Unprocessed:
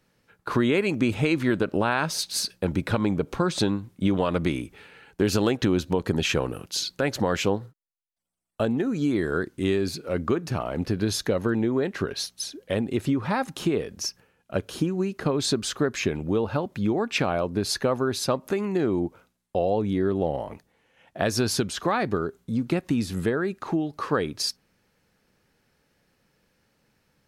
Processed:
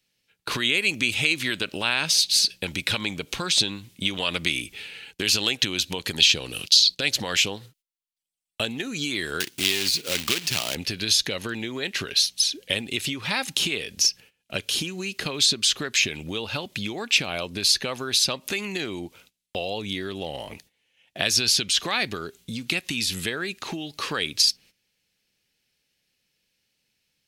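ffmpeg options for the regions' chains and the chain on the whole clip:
ffmpeg -i in.wav -filter_complex "[0:a]asettb=1/sr,asplit=3[link_01][link_02][link_03];[link_01]atrim=end=6.204[link_04];[link_02]atrim=start=6.2:end=7.11,asetpts=PTS-STARTPTS,afade=type=in:duration=0.004:curve=qsin,afade=type=out:start_time=0.906:duration=0.004:curve=qsin,agate=range=-11dB:threshold=-50dB:ratio=16:release=100:detection=peak,equalizer=frequency=4300:width_type=o:width=1.2:gain=13[link_05];[link_03]atrim=start=7.106[link_06];[link_04][link_05]acrossfade=duration=0.004:curve1=hsin:curve2=qsin[link_07];[link_07][link_06]acrossfade=duration=0.004:curve1=qsin:curve2=hsin,asettb=1/sr,asplit=3[link_08][link_09][link_10];[link_08]atrim=end=9.404[link_11];[link_09]atrim=start=9.4:end=10.75,asetpts=PTS-STARTPTS,afade=type=in:duration=0.004:curve=qsin,afade=type=out:start_time=1.346:duration=0.004:curve=qsin,acrusher=bits=2:mode=log:mix=0:aa=0.000001,highpass=84[link_12];[link_10]atrim=start=10.746[link_13];[link_11][link_12]acrossfade=duration=0.004:curve1=hsin:curve2=qsin[link_14];[link_14][link_13]acrossfade=duration=0.004:curve1=qsin:curve2=hsin,agate=range=-14dB:threshold=-53dB:ratio=16:detection=peak,highshelf=frequency=1900:width_type=q:width=1.5:gain=13,acrossover=split=830|6300[link_15][link_16][link_17];[link_15]acompressor=threshold=-32dB:ratio=4[link_18];[link_16]acompressor=threshold=-19dB:ratio=4[link_19];[link_17]acompressor=threshold=-30dB:ratio=4[link_20];[link_18][link_19][link_20]amix=inputs=3:normalize=0" out.wav

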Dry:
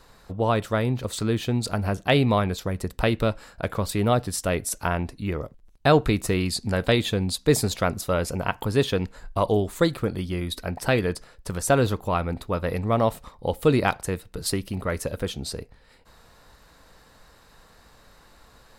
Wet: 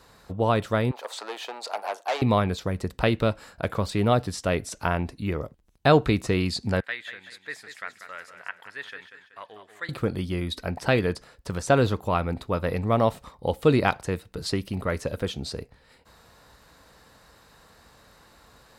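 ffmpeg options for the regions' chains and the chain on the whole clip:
ffmpeg -i in.wav -filter_complex "[0:a]asettb=1/sr,asplit=3[link_01][link_02][link_03];[link_01]atrim=end=0.914[link_04];[link_02]atrim=start=0.91:end=2.22,asetpts=PTS-STARTPTS,afade=type=in:duration=0.004:curve=qsin,afade=type=out:start_time=1.306:duration=0.004:curve=qsin,equalizer=frequency=840:width_type=o:width=0.85:gain=11.5,aeval=exprs='(tanh(11.2*val(0)+0.5)-tanh(0.5))/11.2':channel_layout=same,highpass=frequency=500:width=0.5412,highpass=frequency=500:width=1.3066[link_05];[link_03]atrim=start=2.216[link_06];[link_04][link_05]acrossfade=duration=0.004:curve1=hsin:curve2=qsin[link_07];[link_07][link_06]acrossfade=duration=0.004:curve1=qsin:curve2=hsin,asettb=1/sr,asplit=3[link_08][link_09][link_10];[link_08]atrim=end=6.804[link_11];[link_09]atrim=start=6.8:end=9.89,asetpts=PTS-STARTPTS,afade=type=in:duration=0.004:curve=qsin,afade=type=out:start_time=3.086:duration=0.004:curve=qsin,bandpass=frequency=1800:width_type=q:width=4.8,aemphasis=mode=production:type=cd,aecho=1:1:189|378|567|756:0.335|0.134|0.0536|0.0214,atrim=end_sample=136269[link_12];[link_10]atrim=start=9.886[link_13];[link_11][link_12]acrossfade=duration=0.004:curve1=hsin:curve2=qsin[link_14];[link_14][link_13]acrossfade=duration=0.004:curve1=qsin:curve2=hsin,acrossover=split=6800[link_15][link_16];[link_16]acompressor=threshold=-52dB:ratio=4:attack=1:release=60[link_17];[link_15][link_17]amix=inputs=2:normalize=0,highpass=52" out.wav

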